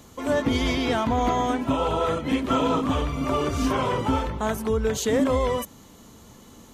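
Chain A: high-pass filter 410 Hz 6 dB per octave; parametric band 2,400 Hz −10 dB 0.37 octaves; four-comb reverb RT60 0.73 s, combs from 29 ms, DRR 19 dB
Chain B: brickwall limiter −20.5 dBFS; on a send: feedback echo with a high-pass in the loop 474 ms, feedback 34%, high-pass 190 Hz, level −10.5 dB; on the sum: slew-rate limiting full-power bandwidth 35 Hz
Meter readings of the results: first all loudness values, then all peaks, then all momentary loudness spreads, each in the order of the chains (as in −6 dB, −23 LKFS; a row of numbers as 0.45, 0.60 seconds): −27.5, −29.5 LKFS; −14.0, −18.5 dBFS; 5, 10 LU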